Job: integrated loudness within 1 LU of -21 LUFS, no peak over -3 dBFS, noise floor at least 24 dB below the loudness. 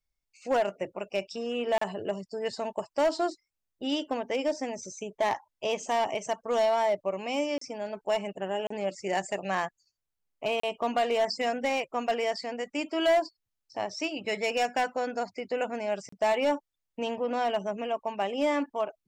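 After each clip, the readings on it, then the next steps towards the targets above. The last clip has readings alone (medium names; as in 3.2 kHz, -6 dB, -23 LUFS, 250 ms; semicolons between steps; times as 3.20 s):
clipped samples 1.0%; clipping level -19.5 dBFS; dropouts 5; longest dropout 34 ms; loudness -30.5 LUFS; peak level -19.5 dBFS; loudness target -21.0 LUFS
-> clip repair -19.5 dBFS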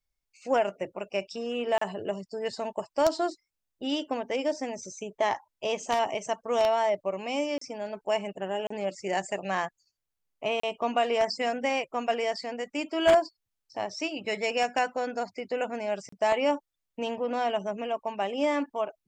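clipped samples 0.0%; dropouts 5; longest dropout 34 ms
-> interpolate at 1.78/7.58/8.67/10.60/16.09 s, 34 ms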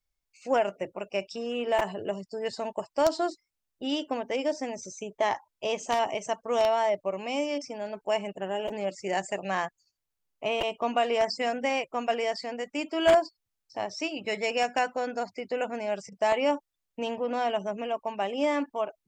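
dropouts 0; loudness -29.5 LUFS; peak level -10.5 dBFS; loudness target -21.0 LUFS
-> trim +8.5 dB; peak limiter -3 dBFS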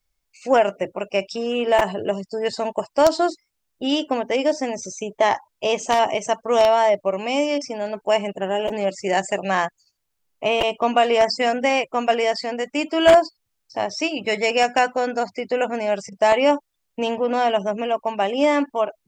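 loudness -21.0 LUFS; peak level -3.0 dBFS; noise floor -75 dBFS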